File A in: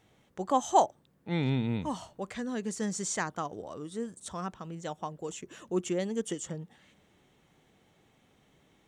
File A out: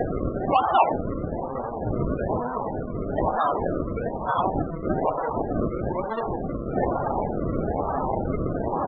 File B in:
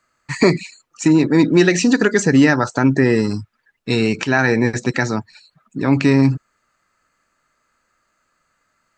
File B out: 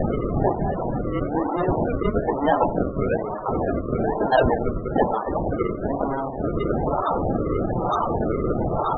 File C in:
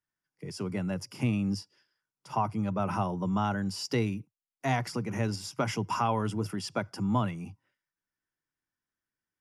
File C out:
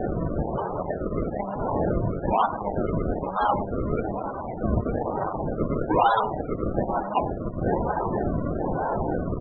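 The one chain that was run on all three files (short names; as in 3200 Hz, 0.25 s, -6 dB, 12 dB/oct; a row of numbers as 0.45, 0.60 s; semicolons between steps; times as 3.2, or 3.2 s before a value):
zero-crossing step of -21 dBFS; chorus 0.37 Hz, delay 20 ms, depth 4.9 ms; in parallel at -4 dB: fuzz box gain 40 dB, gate -38 dBFS; on the sum: BPF 640–4300 Hz; doubler 21 ms -12 dB; decimation with a swept rate 36×, swing 100% 1.1 Hz; on a send: echo 90 ms -12.5 dB; on the sum: loudest bins only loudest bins 32; bell 810 Hz +5 dB 0.85 oct; gain -4 dB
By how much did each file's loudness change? +7.0, -7.5, +5.0 LU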